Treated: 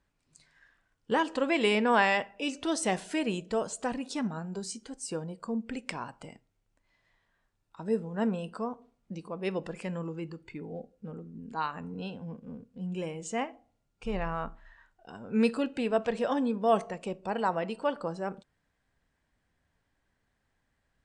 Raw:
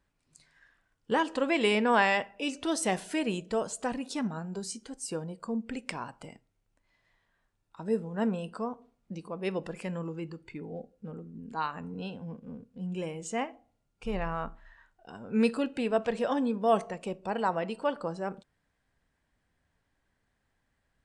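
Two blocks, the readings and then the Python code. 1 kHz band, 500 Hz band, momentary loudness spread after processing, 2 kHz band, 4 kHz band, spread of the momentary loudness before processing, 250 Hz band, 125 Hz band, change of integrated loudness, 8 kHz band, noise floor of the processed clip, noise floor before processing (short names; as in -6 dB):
0.0 dB, 0.0 dB, 16 LU, 0.0 dB, 0.0 dB, 16 LU, 0.0 dB, 0.0 dB, 0.0 dB, -0.5 dB, -78 dBFS, -78 dBFS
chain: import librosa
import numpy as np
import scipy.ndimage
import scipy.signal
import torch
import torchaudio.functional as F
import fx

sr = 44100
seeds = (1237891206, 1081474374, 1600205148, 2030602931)

y = scipy.signal.sosfilt(scipy.signal.butter(4, 9600.0, 'lowpass', fs=sr, output='sos'), x)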